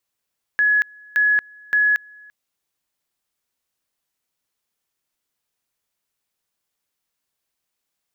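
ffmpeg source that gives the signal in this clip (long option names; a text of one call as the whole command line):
ffmpeg -f lavfi -i "aevalsrc='pow(10,(-13.5-28*gte(mod(t,0.57),0.23))/20)*sin(2*PI*1690*t)':duration=1.71:sample_rate=44100" out.wav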